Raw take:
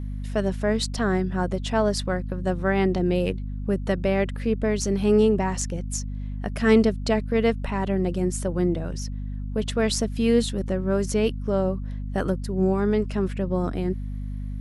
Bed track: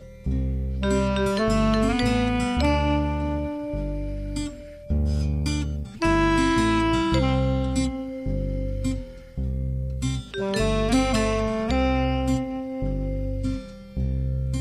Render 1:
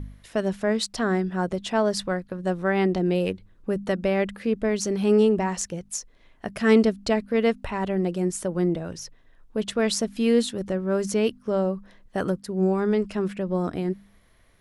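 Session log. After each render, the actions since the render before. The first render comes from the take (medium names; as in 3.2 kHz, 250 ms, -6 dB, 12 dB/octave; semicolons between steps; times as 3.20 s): de-hum 50 Hz, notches 5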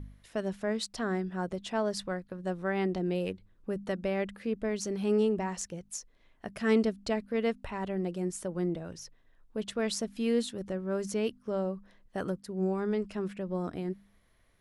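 trim -8 dB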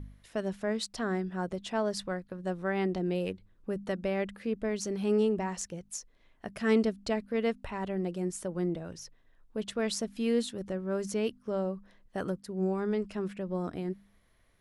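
no audible change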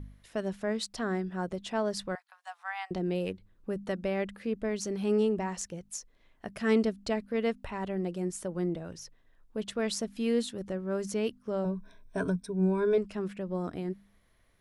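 2.15–2.91 s: Chebyshev high-pass 740 Hz, order 6; 11.64–12.98 s: rippled EQ curve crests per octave 1.6, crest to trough 17 dB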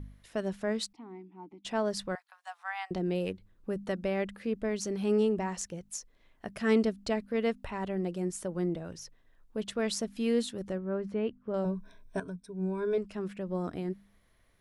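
0.93–1.65 s: vowel filter u; 10.78–11.54 s: distance through air 470 m; 12.20–13.55 s: fade in, from -13 dB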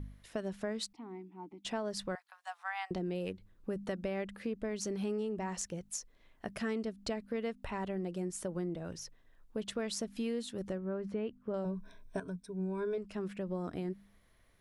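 compression 6:1, threshold -33 dBFS, peak gain reduction 12.5 dB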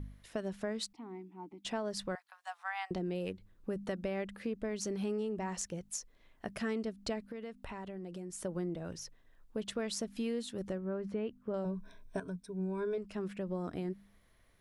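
7.27–8.45 s: compression 4:1, threshold -40 dBFS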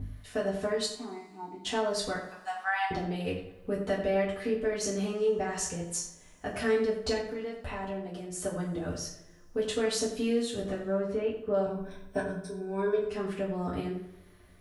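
on a send: filtered feedback delay 88 ms, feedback 42%, low-pass 3.4 kHz, level -9 dB; on the sum: two-slope reverb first 0.33 s, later 1.9 s, from -26 dB, DRR -7 dB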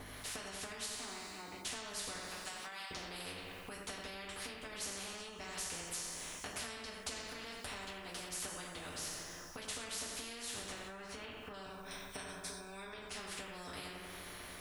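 compression 5:1, threshold -38 dBFS, peak gain reduction 14.5 dB; spectrum-flattening compressor 4:1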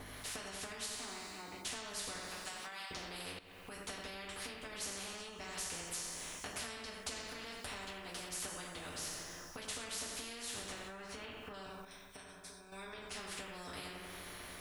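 3.39–3.80 s: fade in, from -14.5 dB; 11.85–12.72 s: gain -7.5 dB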